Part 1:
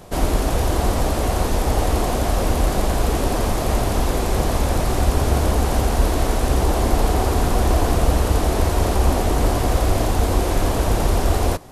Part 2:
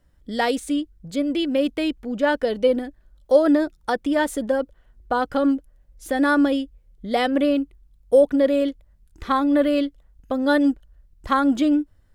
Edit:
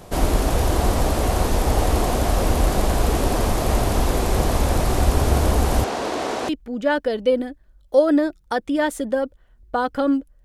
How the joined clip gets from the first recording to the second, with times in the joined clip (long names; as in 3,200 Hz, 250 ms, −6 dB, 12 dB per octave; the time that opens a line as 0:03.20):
part 1
0:05.84–0:06.49: band-pass filter 310–6,000 Hz
0:06.49: continue with part 2 from 0:01.86